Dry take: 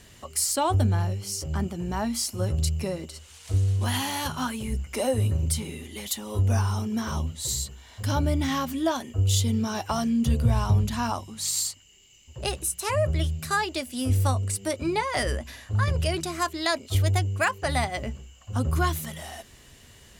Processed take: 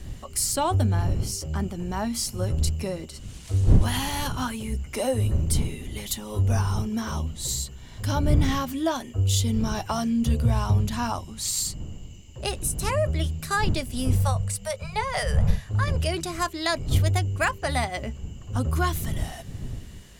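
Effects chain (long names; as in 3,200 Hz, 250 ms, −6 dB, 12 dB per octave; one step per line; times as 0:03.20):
wind on the microphone 100 Hz −30 dBFS
0:14.15–0:15.66: Chebyshev band-stop filter 210–440 Hz, order 4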